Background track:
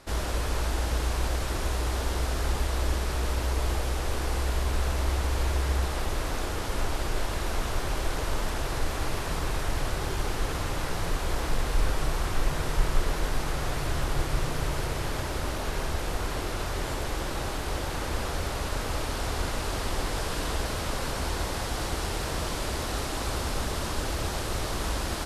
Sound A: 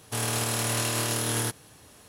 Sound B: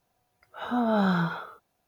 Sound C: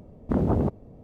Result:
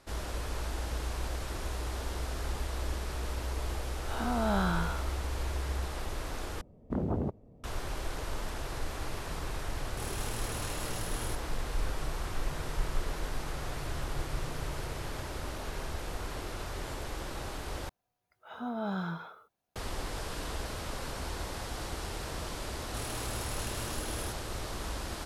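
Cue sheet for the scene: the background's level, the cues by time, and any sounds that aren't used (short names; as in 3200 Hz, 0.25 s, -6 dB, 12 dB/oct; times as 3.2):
background track -7.5 dB
3.54 add B -8.5 dB + spectral dilation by 0.12 s
6.61 replace with C -8.5 dB
9.85 add A -13 dB
17.89 replace with B -10.5 dB
22.82 add A -13 dB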